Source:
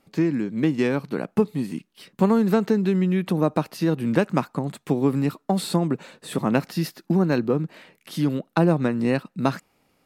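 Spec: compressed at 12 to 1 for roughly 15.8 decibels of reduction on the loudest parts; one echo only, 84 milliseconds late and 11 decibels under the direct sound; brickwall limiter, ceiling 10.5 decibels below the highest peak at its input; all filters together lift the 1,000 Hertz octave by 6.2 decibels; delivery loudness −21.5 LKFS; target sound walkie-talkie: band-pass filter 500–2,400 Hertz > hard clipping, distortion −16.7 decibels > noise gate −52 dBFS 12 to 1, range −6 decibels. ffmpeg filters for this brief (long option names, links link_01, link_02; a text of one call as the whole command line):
ffmpeg -i in.wav -af "equalizer=frequency=1000:width_type=o:gain=8.5,acompressor=threshold=-28dB:ratio=12,alimiter=limit=-23.5dB:level=0:latency=1,highpass=500,lowpass=2400,aecho=1:1:84:0.282,asoftclip=type=hard:threshold=-32.5dB,agate=range=-6dB:threshold=-52dB:ratio=12,volume=21.5dB" out.wav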